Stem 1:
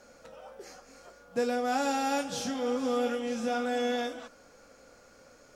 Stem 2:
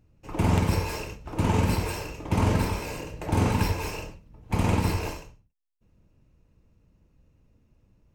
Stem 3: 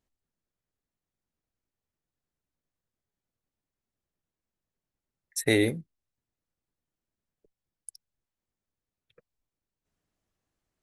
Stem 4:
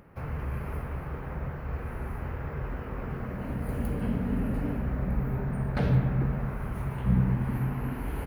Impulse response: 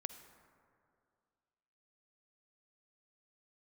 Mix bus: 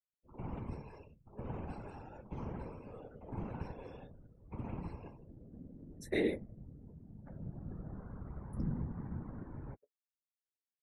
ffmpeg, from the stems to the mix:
-filter_complex "[0:a]agate=range=-33dB:threshold=-43dB:ratio=3:detection=peak,volume=-17dB[a];[1:a]acrusher=bits=8:mix=0:aa=0.000001,volume=-13dB[b];[2:a]highpass=220,flanger=delay=8.7:depth=4:regen=47:speed=0.57:shape=sinusoidal,adelay=650,volume=2dB[c];[3:a]adelay=1500,volume=-7dB,afade=t=in:st=7.4:d=0.68:silence=0.316228[d];[a][b][c][d]amix=inputs=4:normalize=0,afftdn=nr=24:nf=-49,lowpass=f=1.5k:p=1,afftfilt=real='hypot(re,im)*cos(2*PI*random(0))':imag='hypot(re,im)*sin(2*PI*random(1))':win_size=512:overlap=0.75"

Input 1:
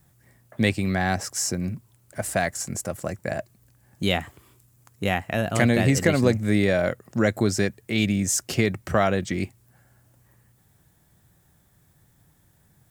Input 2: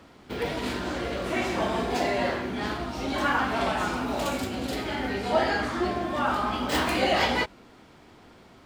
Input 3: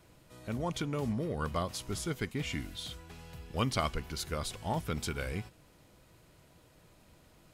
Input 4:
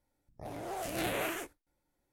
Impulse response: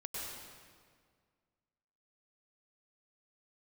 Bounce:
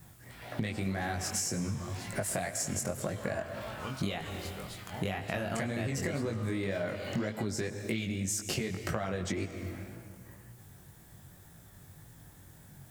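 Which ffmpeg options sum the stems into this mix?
-filter_complex "[0:a]acompressor=threshold=-26dB:ratio=6,volume=1dB,asplit=2[a][b];[b]volume=-10.5dB[c];[1:a]highpass=f=950:w=0.5412,highpass=f=950:w=1.3066,volume=-18.5dB[d];[2:a]adelay=250,volume=-13.5dB[e];[3:a]volume=-11dB[f];[4:a]atrim=start_sample=2205[g];[c][g]afir=irnorm=-1:irlink=0[h];[a][d][e][f][h]amix=inputs=5:normalize=0,acontrast=84,flanger=delay=18:depth=4.6:speed=1.9,acompressor=threshold=-32dB:ratio=4"

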